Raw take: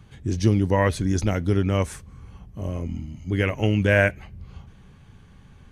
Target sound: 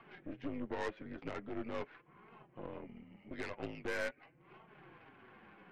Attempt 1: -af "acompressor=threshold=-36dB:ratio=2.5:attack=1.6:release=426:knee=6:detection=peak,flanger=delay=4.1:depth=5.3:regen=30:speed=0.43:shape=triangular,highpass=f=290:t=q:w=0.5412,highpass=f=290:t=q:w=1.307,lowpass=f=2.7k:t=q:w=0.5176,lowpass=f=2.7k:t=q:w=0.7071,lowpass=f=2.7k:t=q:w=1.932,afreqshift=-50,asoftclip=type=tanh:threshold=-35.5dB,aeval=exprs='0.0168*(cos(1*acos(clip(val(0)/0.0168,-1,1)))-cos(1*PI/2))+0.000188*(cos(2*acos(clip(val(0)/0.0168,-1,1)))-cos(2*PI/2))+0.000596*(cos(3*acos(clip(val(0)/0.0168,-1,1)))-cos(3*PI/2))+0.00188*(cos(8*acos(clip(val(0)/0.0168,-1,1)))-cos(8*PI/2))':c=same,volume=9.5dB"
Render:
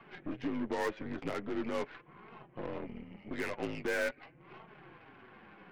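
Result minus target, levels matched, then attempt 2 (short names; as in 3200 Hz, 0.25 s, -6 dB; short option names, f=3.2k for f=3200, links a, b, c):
compressor: peak gain reduction -7 dB
-af "acompressor=threshold=-47.5dB:ratio=2.5:attack=1.6:release=426:knee=6:detection=peak,flanger=delay=4.1:depth=5.3:regen=30:speed=0.43:shape=triangular,highpass=f=290:t=q:w=0.5412,highpass=f=290:t=q:w=1.307,lowpass=f=2.7k:t=q:w=0.5176,lowpass=f=2.7k:t=q:w=0.7071,lowpass=f=2.7k:t=q:w=1.932,afreqshift=-50,asoftclip=type=tanh:threshold=-35.5dB,aeval=exprs='0.0168*(cos(1*acos(clip(val(0)/0.0168,-1,1)))-cos(1*PI/2))+0.000188*(cos(2*acos(clip(val(0)/0.0168,-1,1)))-cos(2*PI/2))+0.000596*(cos(3*acos(clip(val(0)/0.0168,-1,1)))-cos(3*PI/2))+0.00188*(cos(8*acos(clip(val(0)/0.0168,-1,1)))-cos(8*PI/2))':c=same,volume=9.5dB"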